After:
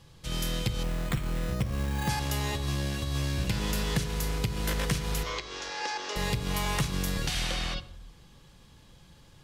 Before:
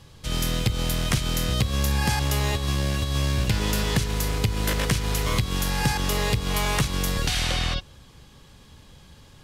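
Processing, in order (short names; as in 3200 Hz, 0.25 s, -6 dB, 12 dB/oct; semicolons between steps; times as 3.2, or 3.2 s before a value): 5.23–6.16 elliptic band-pass 380–6100 Hz, stop band 50 dB; shoebox room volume 2600 m³, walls furnished, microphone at 0.78 m; 0.83–2.09 careless resampling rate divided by 8×, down filtered, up hold; gain -6 dB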